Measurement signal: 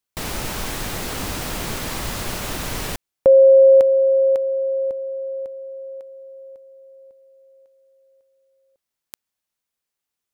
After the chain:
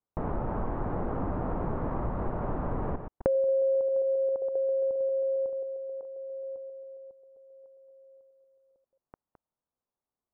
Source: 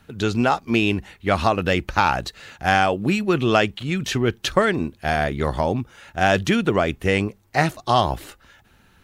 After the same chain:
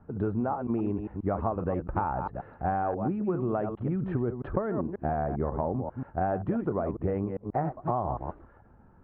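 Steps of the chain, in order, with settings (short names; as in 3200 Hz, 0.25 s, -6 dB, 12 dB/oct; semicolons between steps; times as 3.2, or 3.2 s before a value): reverse delay 0.134 s, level -9 dB; LPF 1100 Hz 24 dB/oct; compressor 6:1, threshold -26 dBFS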